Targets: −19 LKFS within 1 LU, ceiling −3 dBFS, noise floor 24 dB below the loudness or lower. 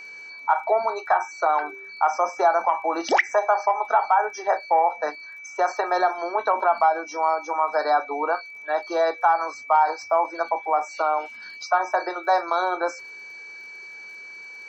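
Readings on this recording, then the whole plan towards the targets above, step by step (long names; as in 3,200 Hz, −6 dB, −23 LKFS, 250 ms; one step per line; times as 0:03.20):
crackle rate 29 per second; interfering tone 2,300 Hz; level of the tone −38 dBFS; integrated loudness −23.0 LKFS; sample peak −8.0 dBFS; target loudness −19.0 LKFS
→ click removal
notch filter 2,300 Hz, Q 30
level +4 dB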